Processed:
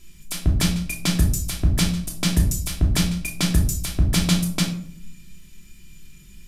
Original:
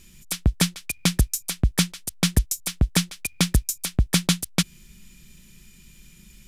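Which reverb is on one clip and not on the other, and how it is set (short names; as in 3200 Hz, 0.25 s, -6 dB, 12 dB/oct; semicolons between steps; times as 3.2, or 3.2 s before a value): shoebox room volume 630 m³, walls furnished, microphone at 3 m; gain -4 dB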